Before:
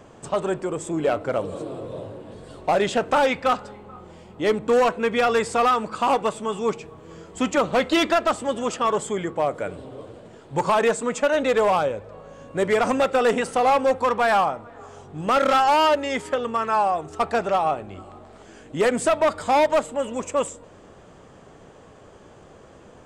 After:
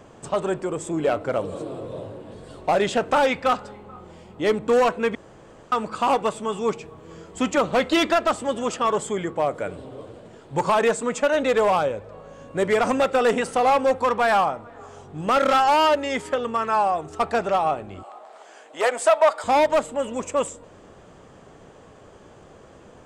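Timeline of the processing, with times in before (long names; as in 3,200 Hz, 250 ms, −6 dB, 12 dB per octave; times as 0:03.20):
0:05.15–0:05.72: fill with room tone
0:18.03–0:19.44: high-pass with resonance 700 Hz, resonance Q 1.7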